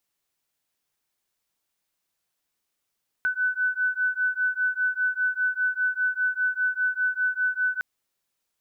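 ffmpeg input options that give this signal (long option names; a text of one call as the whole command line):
ffmpeg -f lavfi -i "aevalsrc='0.0531*(sin(2*PI*1500*t)+sin(2*PI*1505*t))':duration=4.56:sample_rate=44100" out.wav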